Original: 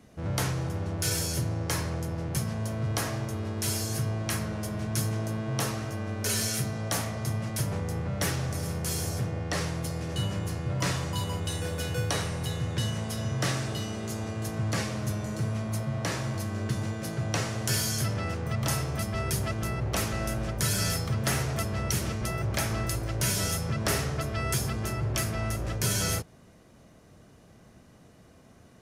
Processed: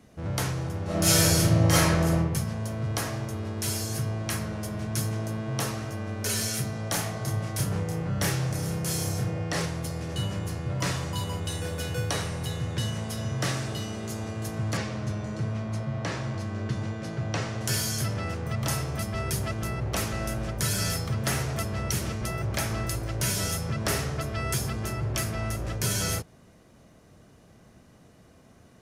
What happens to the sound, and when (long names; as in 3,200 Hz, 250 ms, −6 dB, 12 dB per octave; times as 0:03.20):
0:00.84–0:02.14: thrown reverb, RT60 0.82 s, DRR −10 dB
0:06.89–0:09.66: double-tracking delay 30 ms −3.5 dB
0:14.77–0:17.61: high-frequency loss of the air 80 metres